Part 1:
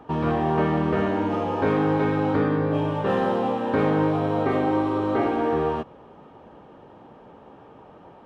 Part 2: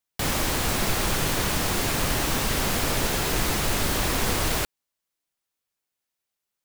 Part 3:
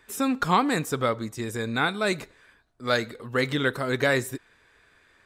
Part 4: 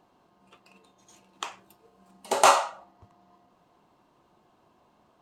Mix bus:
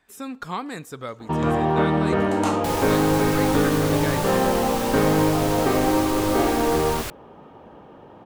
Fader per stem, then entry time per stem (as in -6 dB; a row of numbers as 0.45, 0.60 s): +2.0, -5.0, -8.5, -10.5 dB; 1.20, 2.45, 0.00, 0.00 s